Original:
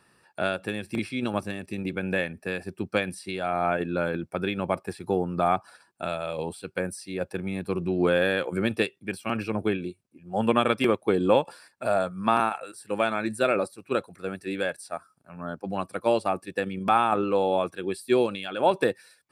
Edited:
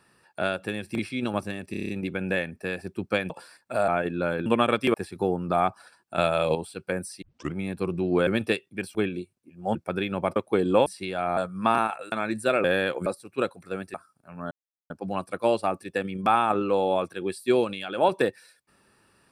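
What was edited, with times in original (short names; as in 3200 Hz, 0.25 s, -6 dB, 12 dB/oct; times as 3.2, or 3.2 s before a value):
1.71 stutter 0.03 s, 7 plays
3.12–3.63 swap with 11.41–11.99
4.21–4.82 swap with 10.43–10.91
6.06–6.43 gain +7.5 dB
7.1 tape start 0.32 s
8.15–8.57 move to 13.59
9.25–9.63 cut
12.74–13.07 cut
14.47–14.95 cut
15.52 insert silence 0.39 s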